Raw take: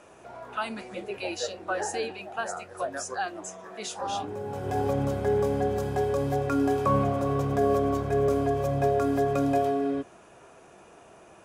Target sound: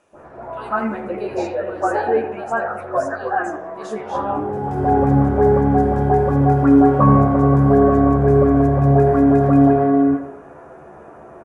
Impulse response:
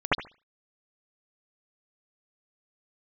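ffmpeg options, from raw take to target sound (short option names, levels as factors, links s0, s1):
-filter_complex "[0:a]asplit=2[s0][s1];[s1]adelay=80,highpass=300,lowpass=3400,asoftclip=type=hard:threshold=0.0841,volume=0.316[s2];[s0][s2]amix=inputs=2:normalize=0[s3];[1:a]atrim=start_sample=2205,asetrate=22491,aresample=44100[s4];[s3][s4]afir=irnorm=-1:irlink=0,volume=0.316"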